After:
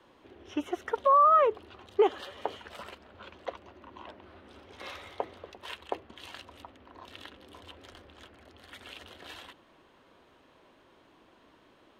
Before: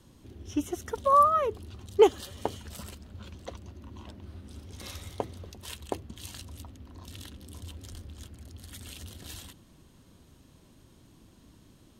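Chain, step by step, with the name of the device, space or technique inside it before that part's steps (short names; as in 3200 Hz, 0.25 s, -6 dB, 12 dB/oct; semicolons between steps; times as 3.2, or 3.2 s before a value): DJ mixer with the lows and highs turned down (three-band isolator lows -23 dB, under 390 Hz, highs -23 dB, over 3100 Hz; limiter -21.5 dBFS, peak gain reduction 11.5 dB); gain +7 dB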